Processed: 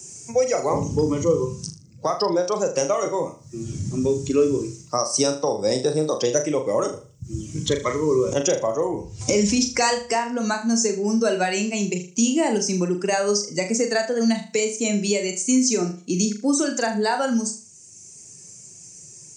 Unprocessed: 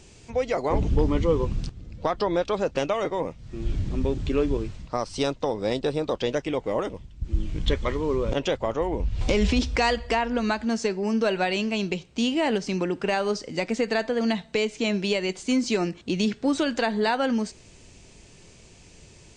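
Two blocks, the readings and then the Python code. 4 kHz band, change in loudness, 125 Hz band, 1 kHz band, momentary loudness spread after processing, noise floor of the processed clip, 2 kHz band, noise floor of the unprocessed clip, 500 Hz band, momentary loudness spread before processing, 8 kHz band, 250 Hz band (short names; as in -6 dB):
+3.0 dB, +4.0 dB, +0.5 dB, +2.5 dB, 13 LU, -47 dBFS, +0.5 dB, -51 dBFS, +4.0 dB, 7 LU, +17.0 dB, +3.5 dB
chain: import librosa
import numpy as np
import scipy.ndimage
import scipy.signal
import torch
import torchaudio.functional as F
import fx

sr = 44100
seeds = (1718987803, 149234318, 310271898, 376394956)

p1 = fx.bin_expand(x, sr, power=1.5)
p2 = scipy.signal.sosfilt(scipy.signal.butter(4, 110.0, 'highpass', fs=sr, output='sos'), p1)
p3 = fx.high_shelf_res(p2, sr, hz=4700.0, db=10.0, q=3.0)
p4 = fx.rider(p3, sr, range_db=10, speed_s=2.0)
p5 = p4 + fx.room_flutter(p4, sr, wall_m=6.7, rt60_s=0.34, dry=0)
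p6 = fx.band_squash(p5, sr, depth_pct=40)
y = p6 * 10.0 ** (5.0 / 20.0)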